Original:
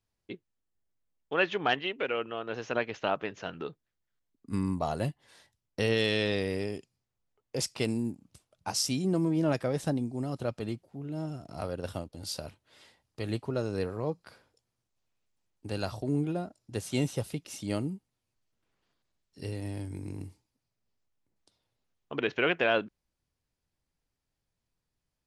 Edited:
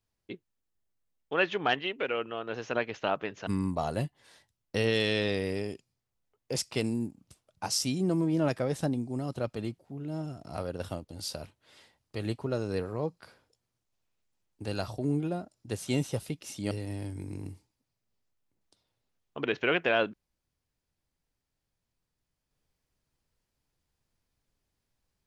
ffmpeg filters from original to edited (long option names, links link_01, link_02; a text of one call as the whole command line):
ffmpeg -i in.wav -filter_complex "[0:a]asplit=3[link_01][link_02][link_03];[link_01]atrim=end=3.472[link_04];[link_02]atrim=start=4.508:end=17.752[link_05];[link_03]atrim=start=19.458[link_06];[link_04][link_05]acrossfade=duration=0.004:curve1=hsin:curve2=hsin[link_07];[link_07][link_06]acrossfade=duration=0.004:curve1=hsin:curve2=hsin" out.wav